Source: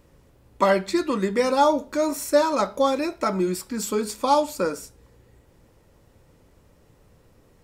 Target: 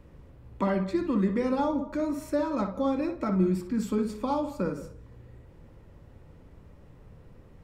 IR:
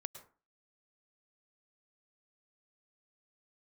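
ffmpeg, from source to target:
-filter_complex "[0:a]bass=frequency=250:gain=6,treble=frequency=4000:gain=-11,acrossover=split=260[link_01][link_02];[link_02]acompressor=threshold=-49dB:ratio=1.5[link_03];[link_01][link_03]amix=inputs=2:normalize=0,asplit=2[link_04][link_05];[1:a]atrim=start_sample=2205,highshelf=frequency=4100:gain=-10.5,adelay=59[link_06];[link_05][link_06]afir=irnorm=-1:irlink=0,volume=-3.5dB[link_07];[link_04][link_07]amix=inputs=2:normalize=0"

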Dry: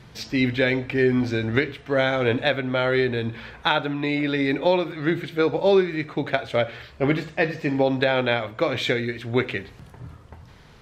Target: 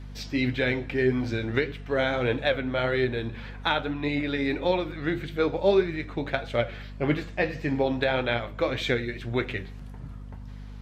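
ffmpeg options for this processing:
ffmpeg -i in.wav -af "flanger=delay=5.7:depth=6.5:regen=61:speed=1.7:shape=triangular,aeval=exprs='val(0)+0.0112*(sin(2*PI*50*n/s)+sin(2*PI*2*50*n/s)/2+sin(2*PI*3*50*n/s)/3+sin(2*PI*4*50*n/s)/4+sin(2*PI*5*50*n/s)/5)':channel_layout=same" out.wav

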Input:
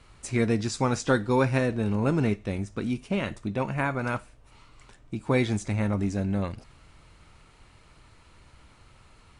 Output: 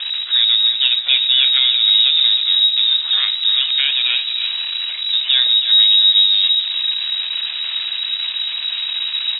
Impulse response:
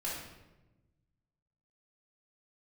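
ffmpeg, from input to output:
-filter_complex "[0:a]aeval=exprs='val(0)+0.5*0.0501*sgn(val(0))':channel_layout=same,equalizer=frequency=100:width_type=o:width=0.34:gain=9.5,asplit=2[link_01][link_02];[link_02]alimiter=limit=-19dB:level=0:latency=1:release=348,volume=-0.5dB[link_03];[link_01][link_03]amix=inputs=2:normalize=0,adynamicsmooth=sensitivity=1.5:basefreq=880,aemphasis=mode=reproduction:type=75fm,aecho=1:1:314|628|942|1256|1570:0.355|0.153|0.0656|0.0282|0.0121,lowpass=frequency=3300:width_type=q:width=0.5098,lowpass=frequency=3300:width_type=q:width=0.6013,lowpass=frequency=3300:width_type=q:width=0.9,lowpass=frequency=3300:width_type=q:width=2.563,afreqshift=-3900,volume=2dB"

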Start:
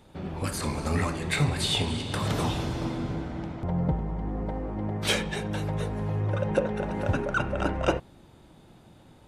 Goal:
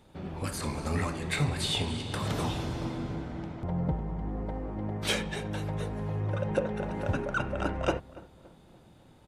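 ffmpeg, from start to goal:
ffmpeg -i in.wav -filter_complex "[0:a]asplit=2[link_01][link_02];[link_02]adelay=285,lowpass=frequency=1400:poles=1,volume=-19dB,asplit=2[link_03][link_04];[link_04]adelay=285,lowpass=frequency=1400:poles=1,volume=0.47,asplit=2[link_05][link_06];[link_06]adelay=285,lowpass=frequency=1400:poles=1,volume=0.47,asplit=2[link_07][link_08];[link_08]adelay=285,lowpass=frequency=1400:poles=1,volume=0.47[link_09];[link_01][link_03][link_05][link_07][link_09]amix=inputs=5:normalize=0,volume=-3.5dB" out.wav

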